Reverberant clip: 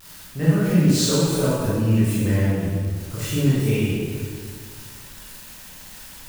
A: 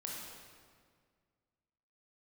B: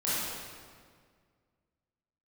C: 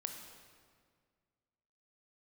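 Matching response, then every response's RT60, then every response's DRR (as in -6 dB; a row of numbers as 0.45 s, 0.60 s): B; 1.9 s, 1.9 s, 1.9 s; -3.0 dB, -10.5 dB, 4.0 dB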